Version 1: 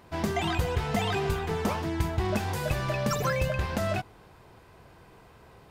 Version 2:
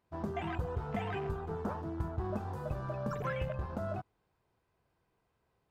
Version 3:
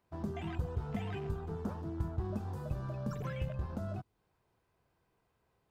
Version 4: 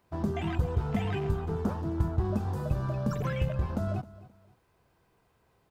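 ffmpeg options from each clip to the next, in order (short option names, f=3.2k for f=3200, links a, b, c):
-af "afwtdn=0.0251,volume=-8dB"
-filter_complex "[0:a]acrossover=split=340|3000[a][b][c];[b]acompressor=threshold=-54dB:ratio=2[d];[a][d][c]amix=inputs=3:normalize=0,volume=1dB"
-af "aecho=1:1:264|528:0.119|0.0345,volume=8dB"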